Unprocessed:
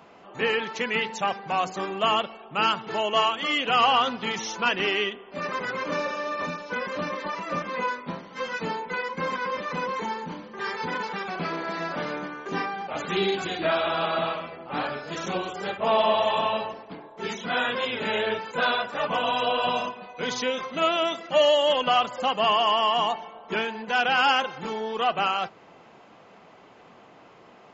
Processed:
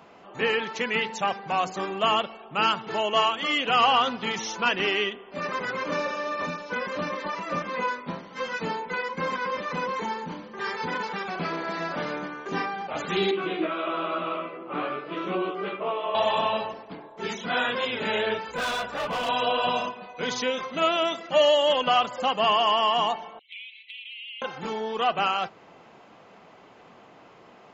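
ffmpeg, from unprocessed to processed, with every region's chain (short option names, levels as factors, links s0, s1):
-filter_complex "[0:a]asettb=1/sr,asplit=3[s0][s1][s2];[s0]atrim=end=13.314[s3];[s1]atrim=start=13.31:end=16.15,asetpts=PTS-STARTPTS,afade=t=in:d=0.004:c=qsin,afade=t=out:st=2.836:d=0.004:c=qsin,acompressor=threshold=0.0562:ratio=6:attack=3.2:release=140:knee=1:detection=peak,highpass=f=160:w=0.5412,highpass=f=160:w=1.3066,equalizer=f=230:t=q:w=4:g=-10,equalizer=f=340:t=q:w=4:g=8,equalizer=f=830:t=q:w=4:g=-9,equalizer=f=1200:t=q:w=4:g=4,equalizer=f=1700:t=q:w=4:g=-8,lowpass=f=2900:w=0.5412,lowpass=f=2900:w=1.3066,asplit=2[s4][s5];[s5]adelay=16,volume=0.75[s6];[s4][s6]amix=inputs=2:normalize=0,atrim=end_sample=125244[s7];[s2]atrim=start=16.146[s8];[s3][s7]acrossfade=d=0.004:c1=hsin:c2=qsin[s9];[s9][s8]acrossfade=d=0.004:c1=qsin:c2=hsin,asettb=1/sr,asplit=3[s10][s11][s12];[s10]atrim=end=18.484[s13];[s11]atrim=start=18.48:end=19.29,asetpts=PTS-STARTPTS,afade=t=in:d=0.004:c=qsin,afade=t=out:st=0.806:d=0.004:c=qsin,asoftclip=type=hard:threshold=0.0531,aeval=exprs='val(0)+0.00158*(sin(2*PI*60*n/s)+sin(2*PI*2*60*n/s)/2+sin(2*PI*3*60*n/s)/3+sin(2*PI*4*60*n/s)/4+sin(2*PI*5*60*n/s)/5)':c=same[s14];[s12]atrim=start=19.286[s15];[s13][s14]acrossfade=d=0.004:c1=hsin:c2=qsin[s16];[s16][s15]acrossfade=d=0.004:c1=qsin:c2=hsin,asettb=1/sr,asplit=3[s17][s18][s19];[s17]atrim=end=23.394[s20];[s18]atrim=start=23.39:end=24.42,asetpts=PTS-STARTPTS,afade=t=in:d=0.004:c=qsin,afade=t=out:st=1.026:d=0.004:c=qsin,asuperpass=centerf=2900:order=20:qfactor=1.4,acompressor=threshold=0.01:ratio=5:attack=3.2:release=140:knee=1:detection=peak,highshelf=f=3200:g=5[s21];[s19]atrim=start=24.416[s22];[s20][s21]acrossfade=d=0.004:c1=hsin:c2=qsin[s23];[s23][s22]acrossfade=d=0.004:c1=qsin:c2=hsin"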